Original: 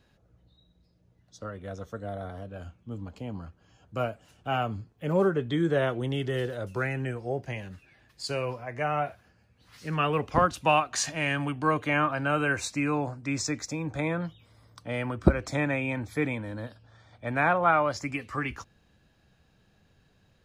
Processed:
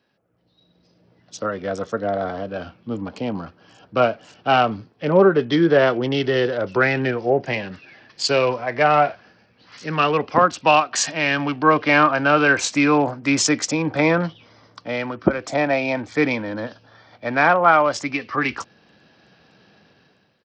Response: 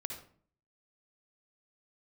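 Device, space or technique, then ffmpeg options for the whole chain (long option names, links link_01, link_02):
Bluetooth headset: -filter_complex "[0:a]bandreject=frequency=3700:width=13,asettb=1/sr,asplit=3[link_01][link_02][link_03];[link_01]atrim=end=15.484[link_04];[link_02]atrim=start=15.48:end=15.97,asetpts=PTS-STARTPTS,afade=type=in:duration=0.004:curve=qsin,afade=type=out:start_time=0.486:duration=0.004:curve=qsin,equalizer=frequency=680:width_type=o:width=0.45:gain=12[link_05];[link_03]atrim=start=15.966[link_06];[link_04][link_05]acrossfade=duration=0.004:curve1=hsin:curve2=qsin[link_07];[link_07][link_06]acrossfade=duration=0.004:curve1=qsin:curve2=hsin,highpass=210,dynaudnorm=framelen=270:gausssize=5:maxgain=15.5dB,aresample=16000,aresample=44100,volume=-1dB" -ar 44100 -c:a sbc -b:a 64k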